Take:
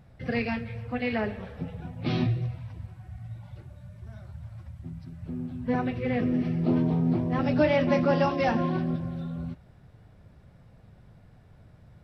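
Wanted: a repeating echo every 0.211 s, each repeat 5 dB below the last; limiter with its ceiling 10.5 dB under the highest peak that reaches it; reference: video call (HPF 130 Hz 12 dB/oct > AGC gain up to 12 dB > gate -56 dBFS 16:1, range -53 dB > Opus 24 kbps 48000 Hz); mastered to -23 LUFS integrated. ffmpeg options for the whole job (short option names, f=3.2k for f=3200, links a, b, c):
-af "alimiter=limit=-20dB:level=0:latency=1,highpass=130,aecho=1:1:211|422|633|844|1055|1266|1477:0.562|0.315|0.176|0.0988|0.0553|0.031|0.0173,dynaudnorm=m=12dB,agate=range=-53dB:threshold=-56dB:ratio=16,volume=7dB" -ar 48000 -c:a libopus -b:a 24k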